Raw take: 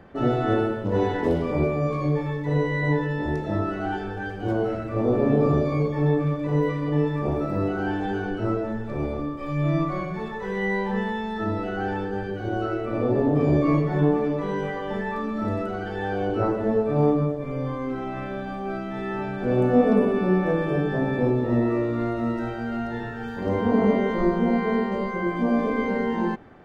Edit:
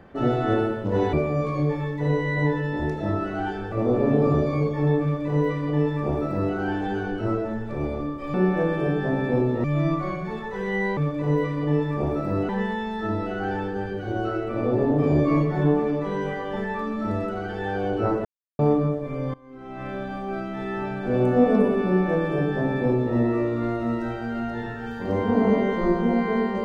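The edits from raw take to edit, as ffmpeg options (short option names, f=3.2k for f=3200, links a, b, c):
-filter_complex "[0:a]asplit=10[a][b][c][d][e][f][g][h][i][j];[a]atrim=end=1.132[k];[b]atrim=start=1.588:end=4.182[l];[c]atrim=start=4.908:end=9.532[m];[d]atrim=start=20.228:end=21.532[n];[e]atrim=start=9.528:end=10.862[o];[f]atrim=start=6.218:end=7.742[p];[g]atrim=start=10.858:end=16.62,asetpts=PTS-STARTPTS,afade=t=out:st=5.758:d=0.004:c=hsin[q];[h]atrim=start=16.62:end=16.96,asetpts=PTS-STARTPTS,volume=0[r];[i]atrim=start=16.96:end=17.71,asetpts=PTS-STARTPTS,afade=t=in:d=0.004:c=hsin,afade=t=out:st=0.746:d=0.004:c=hsin:silence=0.0841395[s];[j]atrim=start=17.71,asetpts=PTS-STARTPTS,afade=t=in:d=0.56:c=qua:silence=0.0841395[t];[k][l]acrossfade=d=0.004:c1=hsin:c2=hsin[u];[u][m]acrossfade=d=0.004:c1=hsin:c2=hsin[v];[v][n]acrossfade=d=0.004:c1=hsin:c2=hsin[w];[w][o]acrossfade=d=0.004:c1=hsin:c2=hsin[x];[x][p]acrossfade=d=0.004:c1=hsin:c2=hsin[y];[q][r][s][t]concat=n=4:v=0:a=1[z];[y][z]acrossfade=d=0.004:c1=hsin:c2=hsin"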